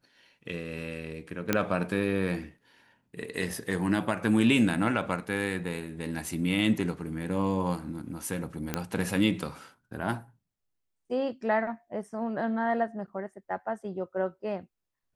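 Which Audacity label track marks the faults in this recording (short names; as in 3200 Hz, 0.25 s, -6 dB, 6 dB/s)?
1.530000	1.530000	pop -9 dBFS
8.740000	8.740000	pop -13 dBFS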